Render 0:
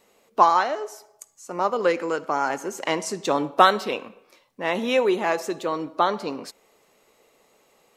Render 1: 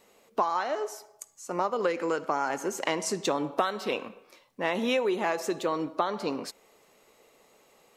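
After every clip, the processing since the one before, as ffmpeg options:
ffmpeg -i in.wav -af "acompressor=threshold=-23dB:ratio=10" out.wav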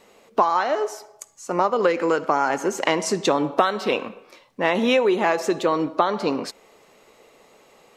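ffmpeg -i in.wav -af "highshelf=frequency=8900:gain=-10.5,volume=8dB" out.wav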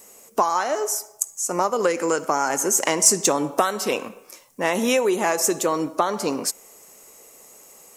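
ffmpeg -i in.wav -af "aexciter=amount=6.1:drive=8.3:freq=5700,volume=-1.5dB" out.wav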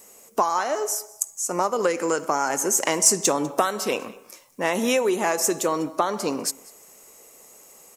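ffmpeg -i in.wav -af "aecho=1:1:198:0.075,volume=-1.5dB" out.wav

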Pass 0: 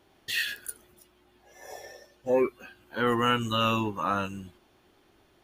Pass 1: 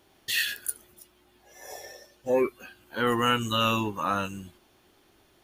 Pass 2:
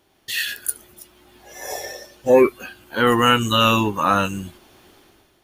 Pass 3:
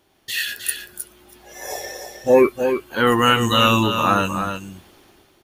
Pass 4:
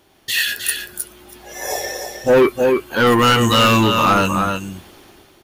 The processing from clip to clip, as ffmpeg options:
ffmpeg -i in.wav -af "highshelf=frequency=4400:gain=7.5" out.wav
ffmpeg -i in.wav -af "dynaudnorm=framelen=120:gausssize=9:maxgain=12.5dB" out.wav
ffmpeg -i in.wav -af "aecho=1:1:311:0.422" out.wav
ffmpeg -i in.wav -af "asoftclip=type=tanh:threshold=-14.5dB,volume=6.5dB" out.wav

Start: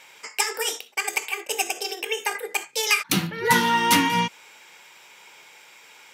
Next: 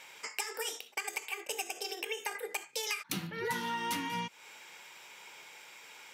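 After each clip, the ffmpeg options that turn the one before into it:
ffmpeg -i in.wav -af "acompressor=threshold=-32dB:ratio=4,volume=-3dB" out.wav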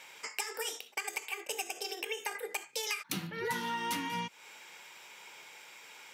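ffmpeg -i in.wav -af "highpass=87" out.wav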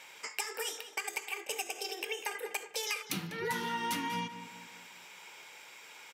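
ffmpeg -i in.wav -filter_complex "[0:a]asplit=2[link_01][link_02];[link_02]adelay=197,lowpass=frequency=3700:poles=1,volume=-11dB,asplit=2[link_03][link_04];[link_04]adelay=197,lowpass=frequency=3700:poles=1,volume=0.48,asplit=2[link_05][link_06];[link_06]adelay=197,lowpass=frequency=3700:poles=1,volume=0.48,asplit=2[link_07][link_08];[link_08]adelay=197,lowpass=frequency=3700:poles=1,volume=0.48,asplit=2[link_09][link_10];[link_10]adelay=197,lowpass=frequency=3700:poles=1,volume=0.48[link_11];[link_01][link_03][link_05][link_07][link_09][link_11]amix=inputs=6:normalize=0" out.wav

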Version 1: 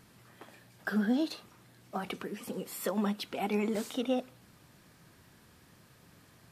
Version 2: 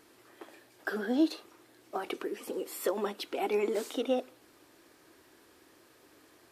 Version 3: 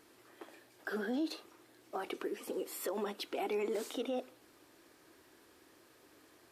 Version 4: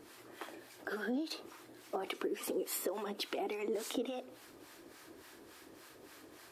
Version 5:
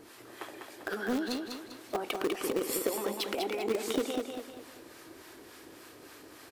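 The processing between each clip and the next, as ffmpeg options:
ffmpeg -i in.wav -af "lowshelf=frequency=240:width_type=q:width=3:gain=-10.5" out.wav
ffmpeg -i in.wav -af "alimiter=level_in=1.5dB:limit=-24dB:level=0:latency=1:release=44,volume=-1.5dB,volume=-2.5dB" out.wav
ffmpeg -i in.wav -filter_complex "[0:a]acompressor=threshold=-41dB:ratio=12,acrossover=split=750[link_01][link_02];[link_01]aeval=exprs='val(0)*(1-0.7/2+0.7/2*cos(2*PI*3.5*n/s))':channel_layout=same[link_03];[link_02]aeval=exprs='val(0)*(1-0.7/2-0.7/2*cos(2*PI*3.5*n/s))':channel_layout=same[link_04];[link_03][link_04]amix=inputs=2:normalize=0,volume=10dB" out.wav
ffmpeg -i in.wav -filter_complex "[0:a]asplit=2[link_01][link_02];[link_02]acrusher=bits=4:mix=0:aa=0.000001,volume=-9dB[link_03];[link_01][link_03]amix=inputs=2:normalize=0,aecho=1:1:198|396|594|792|990:0.562|0.219|0.0855|0.0334|0.013,volume=3.5dB" out.wav

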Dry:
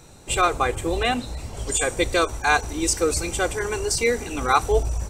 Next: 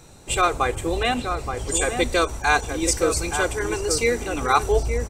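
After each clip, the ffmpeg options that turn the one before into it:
ffmpeg -i in.wav -filter_complex "[0:a]asplit=2[link_01][link_02];[link_02]adelay=874.6,volume=-6dB,highshelf=frequency=4000:gain=-19.7[link_03];[link_01][link_03]amix=inputs=2:normalize=0" out.wav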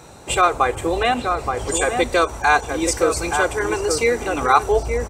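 ffmpeg -i in.wav -filter_complex "[0:a]highpass=42,equalizer=frequency=890:width=0.5:gain=7.5,asplit=2[link_01][link_02];[link_02]acompressor=threshold=-24dB:ratio=6,volume=2dB[link_03];[link_01][link_03]amix=inputs=2:normalize=0,volume=-4.5dB" out.wav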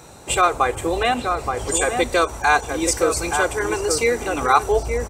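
ffmpeg -i in.wav -af "highshelf=frequency=7500:gain=5.5,volume=-1dB" out.wav

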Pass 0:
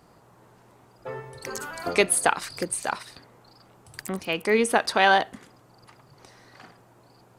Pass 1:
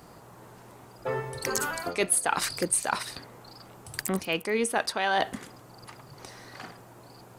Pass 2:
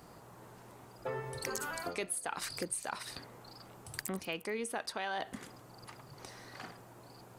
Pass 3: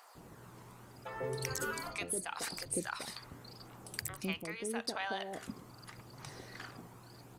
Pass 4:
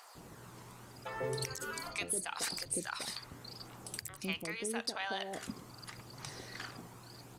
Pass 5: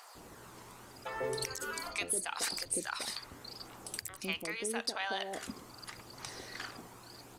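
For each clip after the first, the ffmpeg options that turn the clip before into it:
ffmpeg -i in.wav -af "areverse,acompressor=threshold=-29dB:ratio=8,areverse,crystalizer=i=0.5:c=0,volume=5.5dB" out.wav
ffmpeg -i in.wav -af "acompressor=threshold=-30dB:ratio=5,volume=-4.5dB" out.wav
ffmpeg -i in.wav -filter_complex "[0:a]aphaser=in_gain=1:out_gain=1:delay=1:decay=0.31:speed=0.8:type=triangular,acrossover=split=680[link_01][link_02];[link_01]adelay=150[link_03];[link_03][link_02]amix=inputs=2:normalize=0" out.wav
ffmpeg -i in.wav -af "equalizer=frequency=5600:width_type=o:width=2.5:gain=5,alimiter=limit=-24dB:level=0:latency=1:release=408,volume=1dB" out.wav
ffmpeg -i in.wav -af "equalizer=frequency=140:width=1.5:gain=-9,volume=2dB" out.wav

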